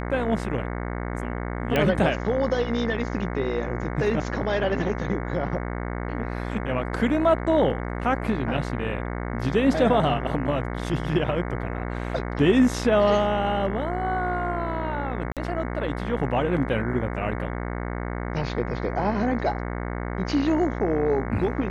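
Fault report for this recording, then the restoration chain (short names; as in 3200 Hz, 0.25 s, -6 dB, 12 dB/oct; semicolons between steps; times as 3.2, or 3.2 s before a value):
buzz 60 Hz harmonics 37 -30 dBFS
1.76 pop -10 dBFS
15.32–15.37 gap 47 ms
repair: de-click; de-hum 60 Hz, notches 37; interpolate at 15.32, 47 ms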